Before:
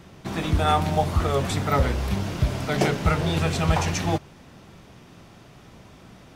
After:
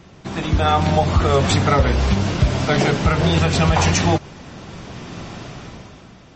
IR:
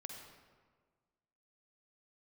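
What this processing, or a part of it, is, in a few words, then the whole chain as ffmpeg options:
low-bitrate web radio: -af "dynaudnorm=f=120:g=13:m=5.01,alimiter=limit=0.398:level=0:latency=1:release=119,volume=1.33" -ar 32000 -c:a libmp3lame -b:a 32k

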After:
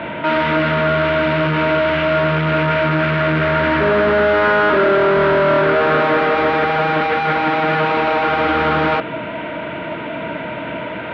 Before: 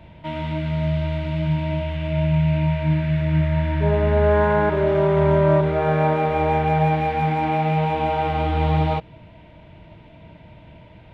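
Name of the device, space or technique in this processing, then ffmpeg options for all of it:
overdrive pedal into a guitar cabinet: -filter_complex "[0:a]asplit=2[s0][s1];[s1]highpass=f=720:p=1,volume=70.8,asoftclip=type=tanh:threshold=0.501[s2];[s0][s2]amix=inputs=2:normalize=0,lowpass=f=1500:p=1,volume=0.501,highpass=100,equalizer=f=100:t=q:w=4:g=-9,equalizer=f=160:t=q:w=4:g=-4,equalizer=f=270:t=q:w=4:g=4,equalizer=f=820:t=q:w=4:g=-7,equalizer=f=1400:t=q:w=4:g=9,lowpass=f=3700:w=0.5412,lowpass=f=3700:w=1.3066,volume=0.891"

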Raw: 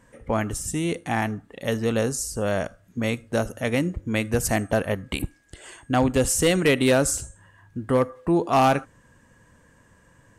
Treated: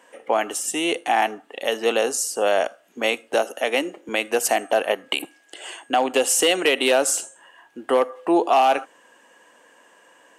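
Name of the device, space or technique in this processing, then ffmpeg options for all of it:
laptop speaker: -filter_complex "[0:a]highpass=f=330:w=0.5412,highpass=f=330:w=1.3066,equalizer=f=760:t=o:w=0.48:g=7.5,equalizer=f=2900:t=o:w=0.41:g=9,alimiter=limit=0.237:level=0:latency=1:release=178,asettb=1/sr,asplit=3[s0][s1][s2];[s0]atrim=end=3.344[s3];[s1]atrim=start=3.34:end=4.09,asetpts=PTS-STARTPTS,afade=t=in:d=0.004:c=qsin,afade=t=out:st=0.746:d=0.004:c=qsin,highpass=f=200:w=0.5412,highpass=f=200:w=1.3066[s4];[s2]atrim=start=4.086[s5];[s3][s4]acrossfade=d=0.004:c1=hsin:c2=qsin[s6];[s6][s5]acrossfade=d=0.004:c1=qsin:c2=hsin,volume=1.68"

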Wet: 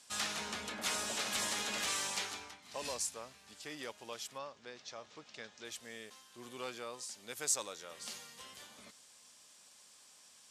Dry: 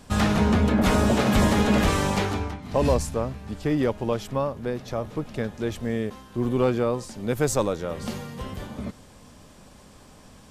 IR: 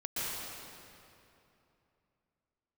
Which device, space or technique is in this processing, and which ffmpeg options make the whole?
piezo pickup straight into a mixer: -filter_complex "[0:a]asettb=1/sr,asplit=3[s0][s1][s2];[s0]atrim=end=4.384[s3];[s1]atrim=start=4.38:end=5.65,asetpts=PTS-STARTPTS,afade=t=in:d=0.004:c=qsin,afade=t=out:st=1.266:d=0.004:c=qsin,lowpass=f=6600:w=0.5412,lowpass=f=6600:w=1.3066[s4];[s2]atrim=start=5.646[s5];[s3][s4]acrossfade=d=0.004:c1=hsin:c2=qsin[s6];[s6][s5]acrossfade=d=0.004:c1=qsin:c2=hsin,lowpass=8200,aderivative,volume=1.12"

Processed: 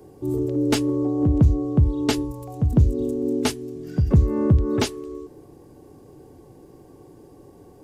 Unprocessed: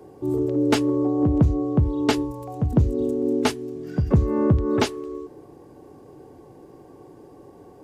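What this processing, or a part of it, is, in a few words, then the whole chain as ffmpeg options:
smiley-face EQ: -af "lowshelf=f=81:g=7,equalizer=f=1000:t=o:w=2.5:g=-4.5,highshelf=f=5700:g=5.5"

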